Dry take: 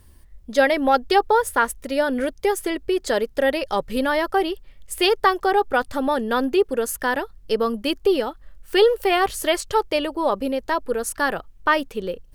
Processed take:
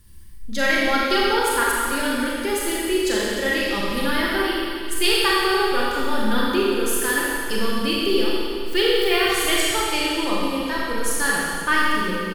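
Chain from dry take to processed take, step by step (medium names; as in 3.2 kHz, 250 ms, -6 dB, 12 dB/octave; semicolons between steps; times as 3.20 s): peaking EQ 660 Hz -14 dB 1.5 oct; comb 5.8 ms, depth 31%; Schroeder reverb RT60 2.3 s, combs from 29 ms, DRR -5.5 dB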